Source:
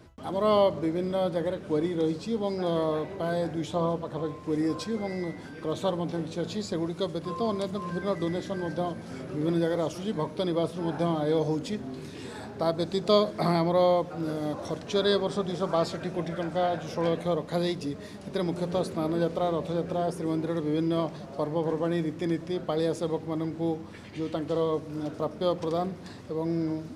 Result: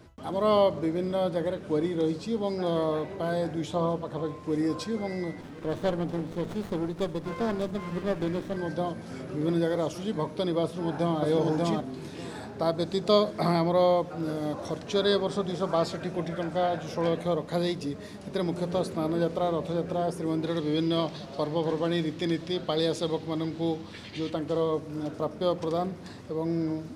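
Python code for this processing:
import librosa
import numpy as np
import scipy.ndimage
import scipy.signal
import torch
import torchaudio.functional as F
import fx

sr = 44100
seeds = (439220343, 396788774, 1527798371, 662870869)

y = fx.running_max(x, sr, window=17, at=(5.41, 8.57))
y = fx.echo_throw(y, sr, start_s=10.63, length_s=0.58, ms=590, feedback_pct=15, wet_db=-1.0)
y = fx.peak_eq(y, sr, hz=3800.0, db=10.0, octaves=1.2, at=(20.43, 24.3))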